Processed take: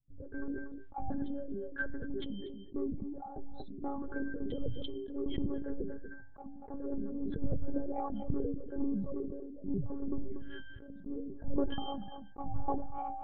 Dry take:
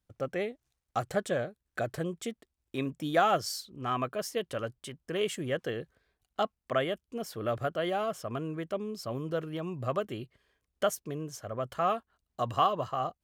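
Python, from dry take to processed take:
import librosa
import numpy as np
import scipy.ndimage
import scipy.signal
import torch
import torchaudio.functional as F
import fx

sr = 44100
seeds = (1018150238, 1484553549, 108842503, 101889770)

y = scipy.signal.sosfilt(scipy.signal.butter(2, 42.0, 'highpass', fs=sr, output='sos'), x)
y = fx.spec_gate(y, sr, threshold_db=-10, keep='strong')
y = fx.peak_eq(y, sr, hz=100.0, db=7.0, octaves=0.31)
y = fx.over_compress(y, sr, threshold_db=-34.0, ratio=-0.5)
y = fx.octave_resonator(y, sr, note='G', decay_s=0.28)
y = 10.0 ** (-35.5 / 20.0) * np.tanh(y / 10.0 ** (-35.5 / 20.0))
y = fx.tremolo_random(y, sr, seeds[0], hz=3.5, depth_pct=55)
y = fx.lpc_monotone(y, sr, seeds[1], pitch_hz=280.0, order=10)
y = y + 10.0 ** (-21.5 / 20.0) * np.pad(y, (int(238 * sr / 1000.0), 0))[:len(y)]
y = fx.sustainer(y, sr, db_per_s=31.0)
y = y * 10.0 ** (17.5 / 20.0)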